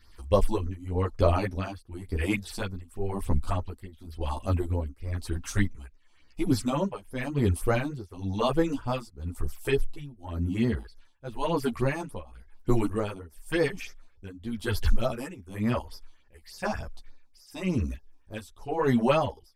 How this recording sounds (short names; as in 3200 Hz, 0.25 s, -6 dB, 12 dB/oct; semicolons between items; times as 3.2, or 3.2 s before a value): phasing stages 6, 3.4 Hz, lowest notch 110–3000 Hz; tremolo triangle 0.96 Hz, depth 95%; a shimmering, thickened sound